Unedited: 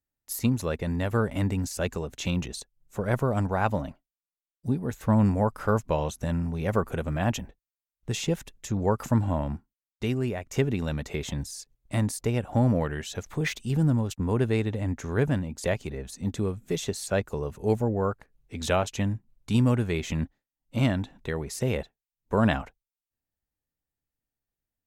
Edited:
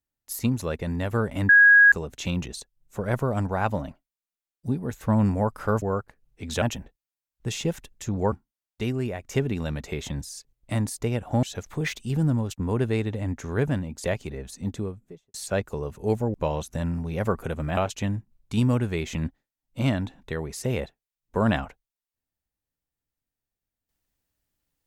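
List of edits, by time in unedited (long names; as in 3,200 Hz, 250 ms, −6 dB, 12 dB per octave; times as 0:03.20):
0:01.49–0:01.92: beep over 1,650 Hz −10.5 dBFS
0:05.82–0:07.25: swap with 0:17.94–0:18.74
0:08.95–0:09.54: remove
0:12.65–0:13.03: remove
0:16.17–0:16.94: fade out and dull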